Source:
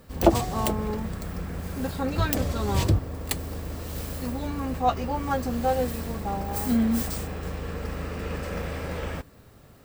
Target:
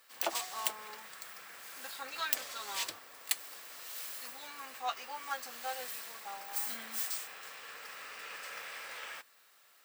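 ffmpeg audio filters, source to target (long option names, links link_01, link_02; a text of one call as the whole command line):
ffmpeg -i in.wav -af "highpass=1500,volume=-2dB" out.wav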